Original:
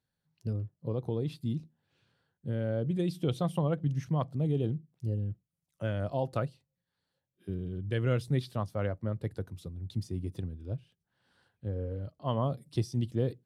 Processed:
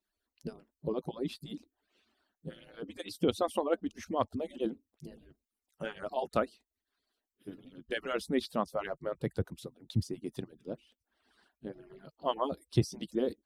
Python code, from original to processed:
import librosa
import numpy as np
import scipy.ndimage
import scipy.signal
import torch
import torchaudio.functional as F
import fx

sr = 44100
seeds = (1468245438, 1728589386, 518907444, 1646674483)

y = fx.hpss_only(x, sr, part='percussive')
y = y * 10.0 ** (4.5 / 20.0)